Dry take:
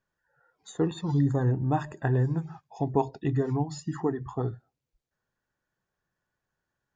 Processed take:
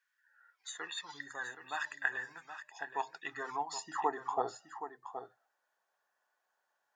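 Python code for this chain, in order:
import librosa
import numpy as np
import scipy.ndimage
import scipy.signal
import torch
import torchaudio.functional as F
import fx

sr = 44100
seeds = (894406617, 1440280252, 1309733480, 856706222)

y = fx.filter_sweep_highpass(x, sr, from_hz=1800.0, to_hz=730.0, start_s=2.72, end_s=4.36, q=2.1)
y = y + 10.0 ** (-10.5 / 20.0) * np.pad(y, (int(772 * sr / 1000.0), 0))[:len(y)]
y = F.gain(torch.from_numpy(y), 1.0).numpy()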